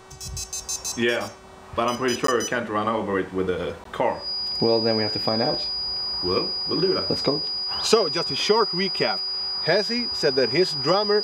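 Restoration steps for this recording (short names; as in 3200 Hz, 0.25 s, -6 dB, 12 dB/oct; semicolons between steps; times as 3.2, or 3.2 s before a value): de-hum 379.4 Hz, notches 25; notch 4900 Hz, Q 30; interpolate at 2.27/3.84, 13 ms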